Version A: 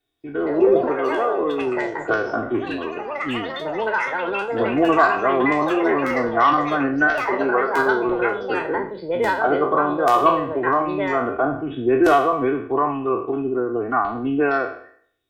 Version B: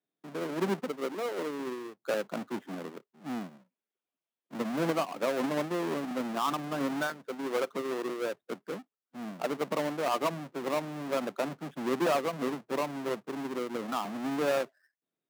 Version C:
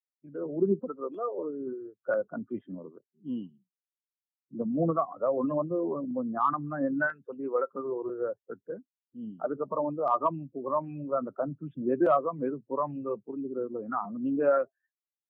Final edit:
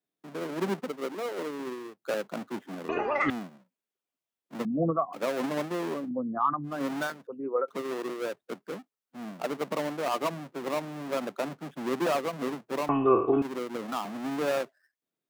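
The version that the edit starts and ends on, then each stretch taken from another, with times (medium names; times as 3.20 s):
B
2.89–3.30 s: from A
4.65–5.13 s: from C
5.98–6.75 s: from C, crossfade 0.24 s
7.27–7.68 s: from C
12.89–13.42 s: from A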